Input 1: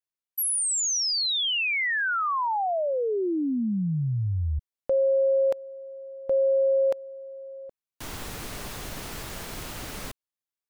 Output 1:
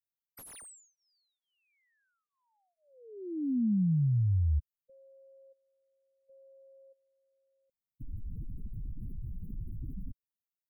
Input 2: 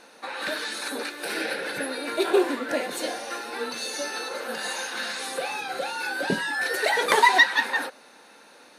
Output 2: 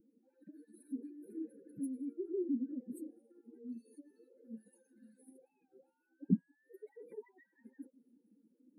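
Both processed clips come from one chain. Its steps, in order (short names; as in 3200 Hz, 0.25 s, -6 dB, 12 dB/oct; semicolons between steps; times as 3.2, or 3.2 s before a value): spectral contrast raised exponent 2.7; inverse Chebyshev band-stop 620–6200 Hz, stop band 50 dB; slew limiter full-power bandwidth 31 Hz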